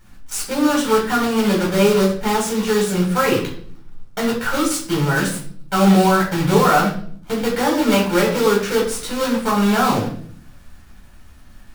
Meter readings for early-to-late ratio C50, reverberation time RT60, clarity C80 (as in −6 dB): 7.0 dB, 0.55 s, 11.0 dB